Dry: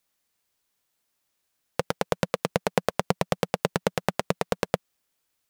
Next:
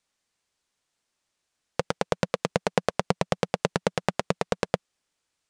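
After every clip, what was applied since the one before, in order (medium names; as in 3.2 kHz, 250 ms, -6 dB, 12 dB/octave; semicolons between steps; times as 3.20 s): low-pass 8.9 kHz 24 dB/octave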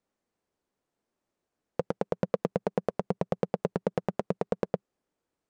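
FFT filter 120 Hz 0 dB, 200 Hz +5 dB, 400 Hz +6 dB, 3.5 kHz -13 dB; peak limiter -12.5 dBFS, peak gain reduction 8.5 dB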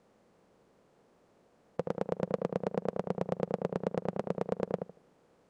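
spectral levelling over time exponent 0.6; filtered feedback delay 77 ms, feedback 24%, low-pass 1.1 kHz, level -5 dB; trim -6 dB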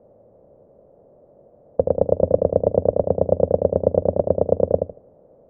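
octave divider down 1 oct, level +1 dB; resonant low-pass 590 Hz, resonance Q 4.9; trim +6.5 dB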